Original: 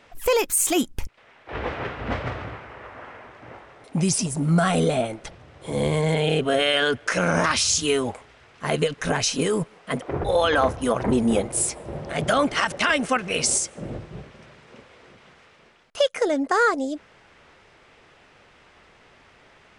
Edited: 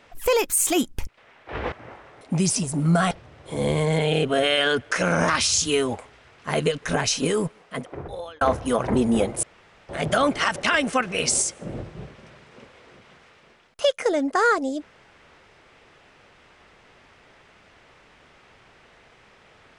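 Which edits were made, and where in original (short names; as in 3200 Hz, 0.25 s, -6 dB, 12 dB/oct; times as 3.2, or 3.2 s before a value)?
1.72–3.35 cut
4.74–5.27 cut
9.52–10.57 fade out
11.59–12.05 room tone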